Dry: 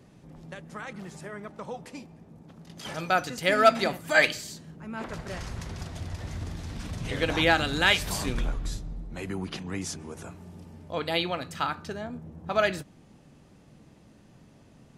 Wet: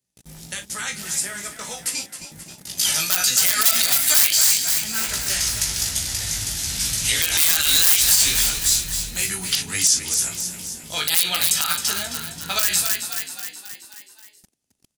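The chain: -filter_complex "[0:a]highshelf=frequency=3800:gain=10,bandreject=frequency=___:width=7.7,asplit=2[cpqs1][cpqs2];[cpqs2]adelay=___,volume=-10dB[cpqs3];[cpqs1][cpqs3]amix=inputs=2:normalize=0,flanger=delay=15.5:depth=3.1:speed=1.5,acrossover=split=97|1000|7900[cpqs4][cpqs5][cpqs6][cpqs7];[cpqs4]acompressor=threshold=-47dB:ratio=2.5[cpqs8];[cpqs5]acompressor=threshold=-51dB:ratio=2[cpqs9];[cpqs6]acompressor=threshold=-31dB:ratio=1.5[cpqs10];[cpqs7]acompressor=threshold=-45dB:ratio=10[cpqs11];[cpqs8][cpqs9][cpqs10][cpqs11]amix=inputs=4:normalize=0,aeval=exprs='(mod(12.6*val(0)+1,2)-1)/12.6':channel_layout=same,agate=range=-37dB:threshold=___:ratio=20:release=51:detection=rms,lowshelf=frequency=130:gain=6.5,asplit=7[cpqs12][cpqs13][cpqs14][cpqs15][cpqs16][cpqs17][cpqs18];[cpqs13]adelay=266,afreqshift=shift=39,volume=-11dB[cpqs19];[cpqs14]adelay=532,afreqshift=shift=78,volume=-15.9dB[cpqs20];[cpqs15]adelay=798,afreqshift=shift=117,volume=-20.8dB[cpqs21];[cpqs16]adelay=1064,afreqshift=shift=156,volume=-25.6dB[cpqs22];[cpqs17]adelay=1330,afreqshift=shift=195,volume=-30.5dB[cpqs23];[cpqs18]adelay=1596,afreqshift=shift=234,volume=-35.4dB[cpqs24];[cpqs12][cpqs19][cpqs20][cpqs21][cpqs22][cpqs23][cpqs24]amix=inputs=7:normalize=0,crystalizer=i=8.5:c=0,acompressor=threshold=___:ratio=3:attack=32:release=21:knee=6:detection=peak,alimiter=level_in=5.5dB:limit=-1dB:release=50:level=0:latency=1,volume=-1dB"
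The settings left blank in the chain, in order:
1100, 39, -53dB, -24dB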